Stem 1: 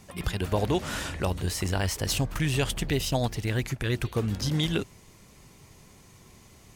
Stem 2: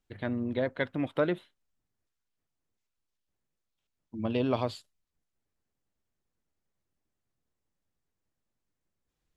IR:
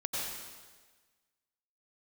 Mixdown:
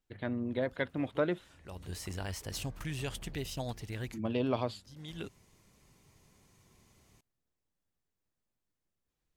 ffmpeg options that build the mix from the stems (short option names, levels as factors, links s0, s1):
-filter_complex "[0:a]adelay=450,volume=0.266[s0];[1:a]volume=0.708,asplit=2[s1][s2];[s2]apad=whole_len=317833[s3];[s0][s3]sidechaincompress=threshold=0.00355:ratio=16:attack=16:release=412[s4];[s4][s1]amix=inputs=2:normalize=0"